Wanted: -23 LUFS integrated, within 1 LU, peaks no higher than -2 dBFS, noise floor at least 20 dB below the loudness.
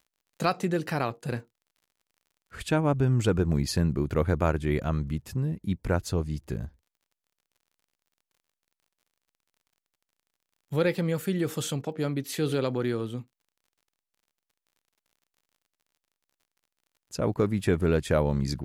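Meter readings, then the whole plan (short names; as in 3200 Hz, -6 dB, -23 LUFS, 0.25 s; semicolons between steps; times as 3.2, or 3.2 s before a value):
ticks 40/s; loudness -28.0 LUFS; peak -11.0 dBFS; loudness target -23.0 LUFS
-> de-click; gain +5 dB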